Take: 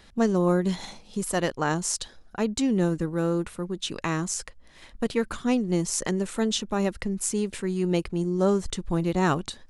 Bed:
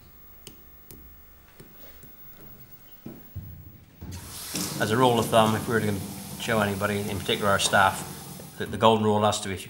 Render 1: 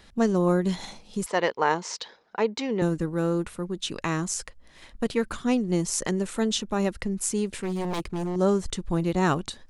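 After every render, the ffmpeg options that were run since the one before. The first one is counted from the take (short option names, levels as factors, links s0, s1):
-filter_complex "[0:a]asettb=1/sr,asplit=3[s0][s1][s2];[s0]atrim=end=1.264[s3];[s1]atrim=start=1.26:end=2.82,asetpts=PTS-STARTPTS,afade=t=in:d=0.004:c=qsin,afade=t=out:st=1.556:d=0.004:c=qsin,highpass=260,equalizer=f=280:t=q:w=4:g=-6,equalizer=f=460:t=q:w=4:g=6,equalizer=f=940:t=q:w=4:g=8,equalizer=f=2100:t=q:w=4:g=7,lowpass=f=5500:w=0.5412,lowpass=f=5500:w=1.3066[s4];[s2]atrim=start=2.816[s5];[s3][s4]acrossfade=d=0.004:c1=hsin:c2=qsin[s6];[s6][s5]acrossfade=d=0.004:c1=qsin:c2=hsin,asettb=1/sr,asplit=3[s7][s8][s9];[s7]atrim=end=7.474[s10];[s8]atrim=start=7.47:end=8.36,asetpts=PTS-STARTPTS,afade=t=in:d=0.004:c=qsin,afade=t=out:st=0.886:d=0.004:c=qsin,aeval=exprs='0.0668*(abs(mod(val(0)/0.0668+3,4)-2)-1)':c=same[s11];[s9]atrim=start=8.356[s12];[s10][s11]acrossfade=d=0.004:c1=hsin:c2=qsin[s13];[s13][s12]acrossfade=d=0.004:c1=qsin:c2=hsin"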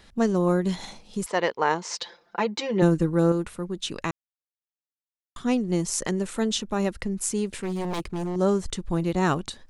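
-filter_complex "[0:a]asettb=1/sr,asplit=3[s0][s1][s2];[s0]atrim=end=1.914[s3];[s1]atrim=start=1.91:end=3.32,asetpts=PTS-STARTPTS,afade=t=in:d=0.004:c=qsin,afade=t=out:st=1.406:d=0.004:c=qsin,aecho=1:1:5.8:0.89,atrim=end_sample=62181[s4];[s2]atrim=start=3.316[s5];[s3][s4]acrossfade=d=0.004:c1=hsin:c2=qsin[s6];[s6][s5]acrossfade=d=0.004:c1=qsin:c2=hsin,asplit=3[s7][s8][s9];[s7]atrim=end=4.11,asetpts=PTS-STARTPTS,afade=t=out:st=4.106:d=0.004:c=hsin[s10];[s8]atrim=start=4.11:end=5.36,asetpts=PTS-STARTPTS,volume=0[s11];[s9]atrim=start=5.36,asetpts=PTS-STARTPTS,afade=t=in:d=0.004:c=hsin[s12];[s10][s11][s12]concat=n=3:v=0:a=1"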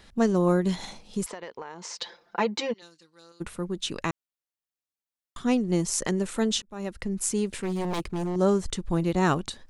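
-filter_complex "[0:a]asettb=1/sr,asplit=3[s0][s1][s2];[s0]atrim=end=1.274[s3];[s1]atrim=start=1.27:end=2.02,asetpts=PTS-STARTPTS,afade=t=in:d=0.004:c=qsin,afade=t=out:st=0.746:d=0.004:c=qsin,acompressor=threshold=0.02:ratio=16:attack=3.2:release=140:knee=1:detection=peak[s4];[s2]atrim=start=2.016[s5];[s3][s4]acrossfade=d=0.004:c1=hsin:c2=qsin[s6];[s6][s5]acrossfade=d=0.004:c1=qsin:c2=hsin,asplit=3[s7][s8][s9];[s7]afade=t=out:st=2.72:d=0.02[s10];[s8]bandpass=f=4500:t=q:w=4.5,afade=t=in:st=2.72:d=0.02,afade=t=out:st=3.4:d=0.02[s11];[s9]afade=t=in:st=3.4:d=0.02[s12];[s10][s11][s12]amix=inputs=3:normalize=0,asplit=2[s13][s14];[s13]atrim=end=6.62,asetpts=PTS-STARTPTS,afade=t=out:st=6.616:d=0.004:c=hsin[s15];[s14]atrim=start=6.62,asetpts=PTS-STARTPTS,afade=t=in:d=0.56[s16];[s15][s16]concat=n=2:v=0:a=1"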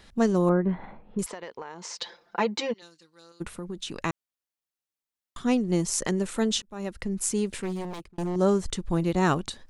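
-filter_complex "[0:a]asettb=1/sr,asplit=3[s0][s1][s2];[s0]atrim=end=0.494[s3];[s1]atrim=start=0.49:end=1.19,asetpts=PTS-STARTPTS,afade=t=in:d=0.004:c=qsin,afade=t=out:st=0.696:d=0.004:c=qsin,lowpass=f=1800:w=0.5412,lowpass=f=1800:w=1.3066[s4];[s2]atrim=start=1.186[s5];[s3][s4]acrossfade=d=0.004:c1=hsin:c2=qsin[s6];[s6][s5]acrossfade=d=0.004:c1=qsin:c2=hsin,asettb=1/sr,asplit=3[s7][s8][s9];[s7]atrim=end=3.524[s10];[s8]atrim=start=3.52:end=4.03,asetpts=PTS-STARTPTS,afade=t=in:d=0.004:c=qsin,afade=t=out:st=0.506:d=0.004:c=qsin,acompressor=threshold=0.0282:ratio=4:attack=3.2:release=140:knee=1:detection=peak[s11];[s9]atrim=start=4.026[s12];[s10][s11]acrossfade=d=0.004:c1=hsin:c2=qsin[s13];[s13][s12]acrossfade=d=0.004:c1=qsin:c2=hsin,asplit=2[s14][s15];[s14]atrim=end=8.18,asetpts=PTS-STARTPTS,afade=t=out:st=7.59:d=0.59[s16];[s15]atrim=start=8.18,asetpts=PTS-STARTPTS,afade=t=in:d=0.004:c=hsin[s17];[s16][s17]concat=n=2:v=0:a=1"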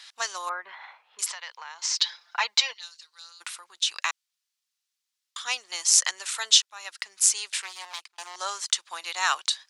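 -af "highpass=f=910:w=0.5412,highpass=f=910:w=1.3066,equalizer=f=4800:t=o:w=2.4:g=13"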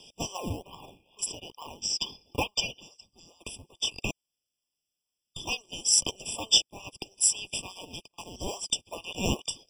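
-filter_complex "[0:a]acrossover=split=410|1900|5100[s0][s1][s2][s3];[s1]acrusher=samples=30:mix=1:aa=0.000001:lfo=1:lforange=18:lforate=2.3[s4];[s0][s4][s2][s3]amix=inputs=4:normalize=0,afftfilt=real='re*eq(mod(floor(b*sr/1024/1200),2),0)':imag='im*eq(mod(floor(b*sr/1024/1200),2),0)':win_size=1024:overlap=0.75"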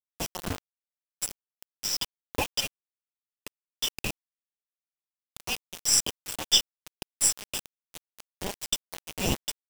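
-af "aeval=exprs='0.562*(cos(1*acos(clip(val(0)/0.562,-1,1)))-cos(1*PI/2))+0.00398*(cos(4*acos(clip(val(0)/0.562,-1,1)))-cos(4*PI/2))+0.00398*(cos(7*acos(clip(val(0)/0.562,-1,1)))-cos(7*PI/2))+0.0224*(cos(8*acos(clip(val(0)/0.562,-1,1)))-cos(8*PI/2))':c=same,acrusher=bits=4:mix=0:aa=0.000001"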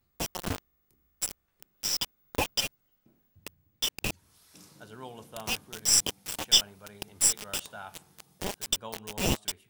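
-filter_complex "[1:a]volume=0.0668[s0];[0:a][s0]amix=inputs=2:normalize=0"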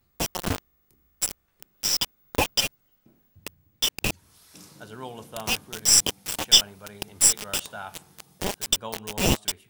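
-af "volume=1.88,alimiter=limit=0.794:level=0:latency=1"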